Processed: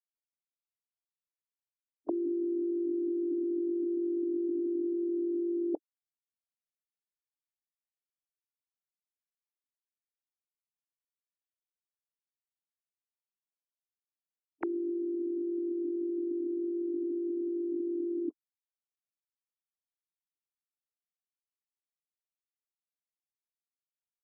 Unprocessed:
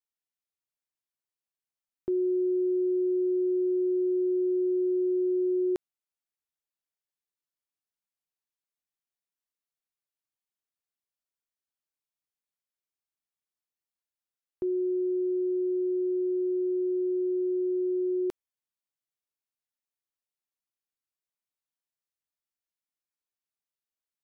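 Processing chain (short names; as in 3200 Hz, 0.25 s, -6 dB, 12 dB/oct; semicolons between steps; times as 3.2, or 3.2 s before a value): sine-wave speech; formant shift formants -4 st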